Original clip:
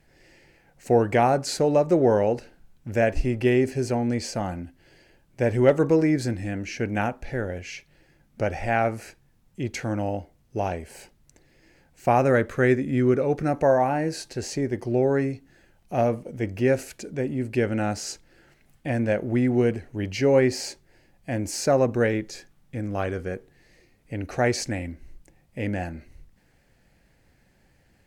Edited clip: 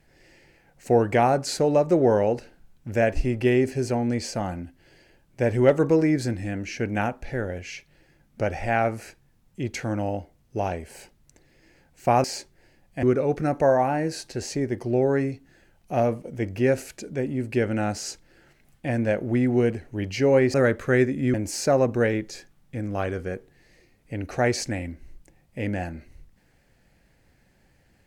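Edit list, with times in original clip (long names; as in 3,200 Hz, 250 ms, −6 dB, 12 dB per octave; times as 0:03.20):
0:12.24–0:13.04: swap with 0:20.55–0:21.34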